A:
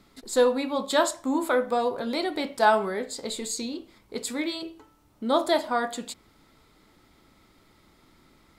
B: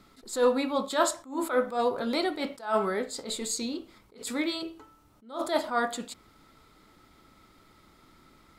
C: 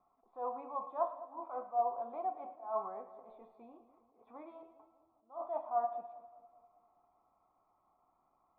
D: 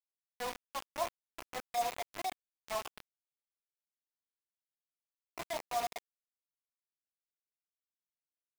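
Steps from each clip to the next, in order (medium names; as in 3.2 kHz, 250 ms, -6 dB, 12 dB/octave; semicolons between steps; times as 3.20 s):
peaking EQ 1.3 kHz +6.5 dB 0.2 oct; attacks held to a fixed rise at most 160 dB/s
cascade formant filter a; two-band feedback delay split 770 Hz, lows 200 ms, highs 110 ms, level -13.5 dB; trim +1 dB
bit crusher 6-bit; trim -2 dB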